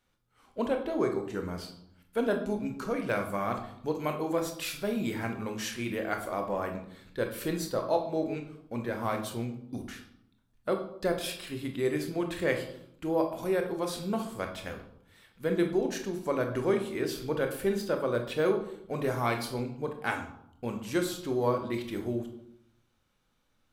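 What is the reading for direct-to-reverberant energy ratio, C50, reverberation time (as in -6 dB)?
4.0 dB, 8.5 dB, 0.75 s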